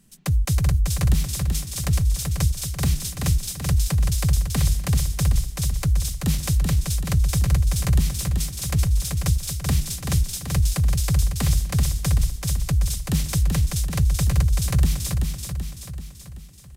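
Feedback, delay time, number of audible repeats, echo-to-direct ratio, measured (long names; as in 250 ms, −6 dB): 54%, 383 ms, 6, −3.0 dB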